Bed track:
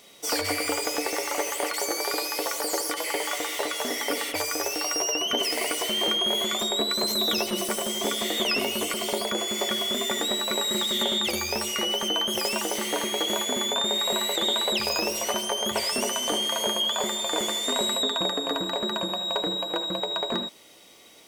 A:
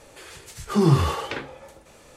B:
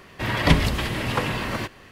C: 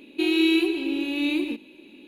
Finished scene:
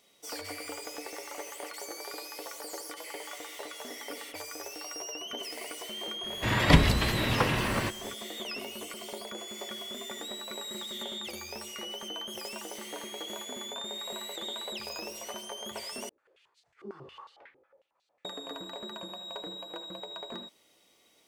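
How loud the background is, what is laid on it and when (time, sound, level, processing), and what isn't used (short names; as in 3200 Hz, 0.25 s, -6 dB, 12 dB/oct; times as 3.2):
bed track -13 dB
6.23 add B -2 dB
16.09 replace with A -14 dB + stepped band-pass 11 Hz 360–4100 Hz
not used: C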